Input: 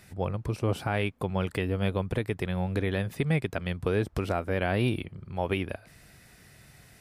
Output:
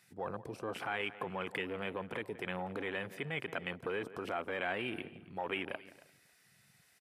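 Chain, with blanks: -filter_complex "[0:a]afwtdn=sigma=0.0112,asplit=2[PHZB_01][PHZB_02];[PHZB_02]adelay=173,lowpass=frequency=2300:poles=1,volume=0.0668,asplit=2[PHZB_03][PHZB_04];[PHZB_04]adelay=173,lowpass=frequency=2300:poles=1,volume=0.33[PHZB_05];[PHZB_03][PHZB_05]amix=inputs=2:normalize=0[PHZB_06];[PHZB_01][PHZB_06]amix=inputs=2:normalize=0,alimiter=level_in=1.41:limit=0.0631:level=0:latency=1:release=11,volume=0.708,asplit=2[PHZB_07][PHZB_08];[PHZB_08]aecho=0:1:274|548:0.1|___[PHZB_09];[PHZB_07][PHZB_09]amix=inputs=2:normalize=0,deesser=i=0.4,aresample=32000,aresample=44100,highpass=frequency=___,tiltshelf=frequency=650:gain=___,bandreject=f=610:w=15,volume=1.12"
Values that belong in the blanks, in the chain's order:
0.015, 220, -6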